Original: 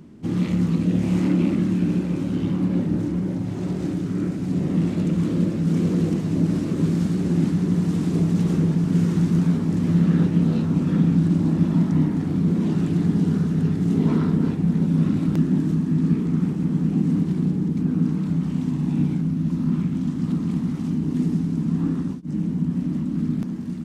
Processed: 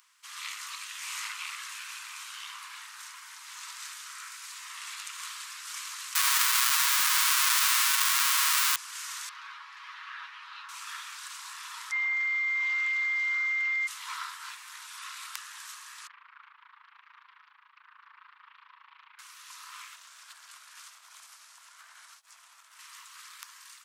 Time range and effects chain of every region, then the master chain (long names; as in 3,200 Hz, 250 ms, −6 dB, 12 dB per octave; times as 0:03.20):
0:06.15–0:08.76: comparator with hysteresis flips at −25.5 dBFS + comb filter 7.3 ms, depth 87%
0:09.29–0:10.69: high-frequency loss of the air 320 metres + comb filter 7.2 ms, depth 46%
0:11.91–0:13.86: high-frequency loss of the air 150 metres + steady tone 2,100 Hz −29 dBFS
0:16.07–0:19.19: amplitude modulation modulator 27 Hz, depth 70% + Gaussian smoothing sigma 3.7 samples + highs frequency-modulated by the lows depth 0.43 ms
0:19.95–0:22.79: mains-hum notches 60/120/180/240/300/360/420/480 Hz + ring modulation 380 Hz + downward compressor 4 to 1, threshold −27 dBFS
whole clip: Butterworth high-pass 1,000 Hz 72 dB per octave; high-shelf EQ 4,000 Hz +12 dB; automatic gain control gain up to 3 dB; level −2.5 dB